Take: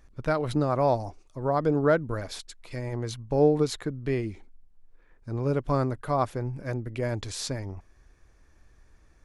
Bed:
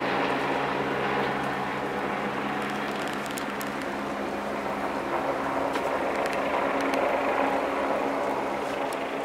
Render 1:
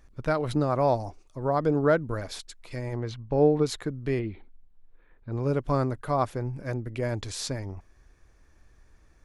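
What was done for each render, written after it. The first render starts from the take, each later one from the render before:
0:03.00–0:03.66: low-pass filter 3,700 Hz
0:04.19–0:05.32: Butterworth low-pass 4,200 Hz 72 dB per octave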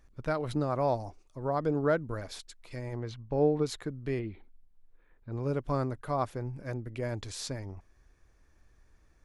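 level −5 dB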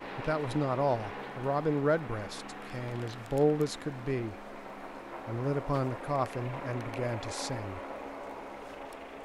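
mix in bed −14.5 dB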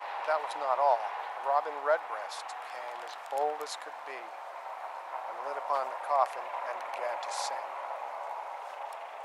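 Chebyshev high-pass filter 650 Hz, order 3
parametric band 900 Hz +8.5 dB 0.9 octaves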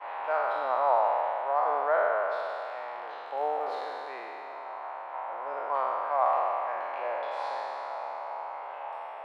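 peak hold with a decay on every bin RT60 2.88 s
high-frequency loss of the air 450 metres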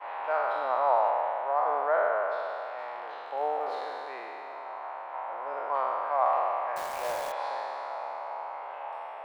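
0:01.10–0:02.79: high-shelf EQ 4,100 Hz −6.5 dB
0:06.76–0:07.32: log-companded quantiser 4 bits

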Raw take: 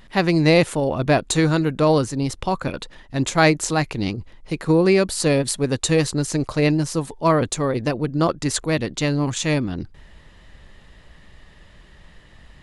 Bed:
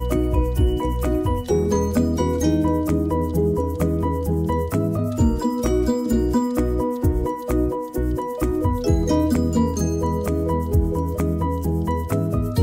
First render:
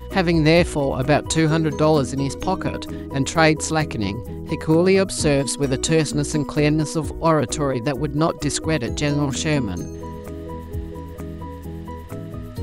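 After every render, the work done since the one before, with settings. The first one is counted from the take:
mix in bed −10.5 dB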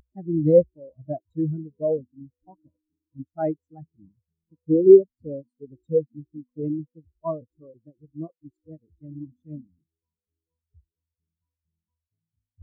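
upward compression, threshold −28 dBFS
every bin expanded away from the loudest bin 4 to 1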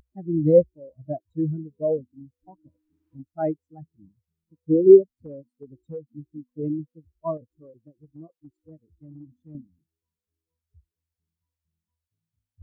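0:02.13–0:03.26: multiband upward and downward compressor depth 70%
0:05.14–0:06.15: downward compressor 3 to 1, threshold −36 dBFS
0:07.37–0:09.55: downward compressor 2.5 to 1, threshold −43 dBFS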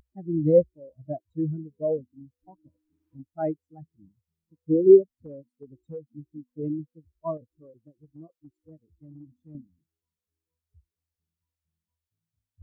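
level −2.5 dB

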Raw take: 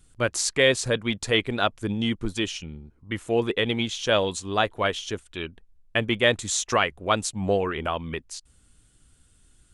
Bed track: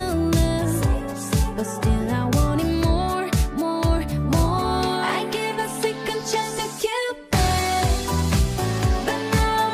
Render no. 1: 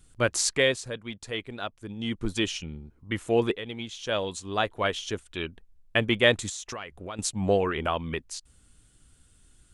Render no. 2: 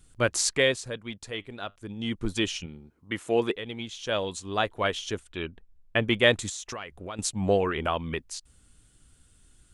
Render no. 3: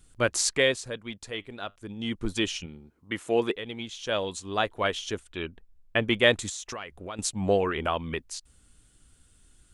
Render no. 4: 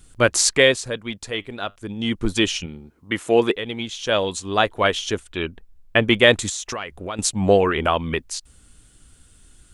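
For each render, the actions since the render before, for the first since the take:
0:00.48–0:02.31: duck −11 dB, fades 0.36 s; 0:03.57–0:05.37: fade in, from −13.5 dB; 0:06.49–0:07.19: downward compressor 5 to 1, threshold −35 dBFS
0:01.28–0:01.76: tuned comb filter 100 Hz, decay 0.25 s, mix 30%; 0:02.66–0:03.56: high-pass filter 220 Hz 6 dB per octave; 0:05.29–0:06.05: high-shelf EQ 5,000 Hz −11.5 dB
parametric band 120 Hz −2.5 dB 1.1 octaves
level +8 dB; brickwall limiter −1 dBFS, peak gain reduction 2.5 dB

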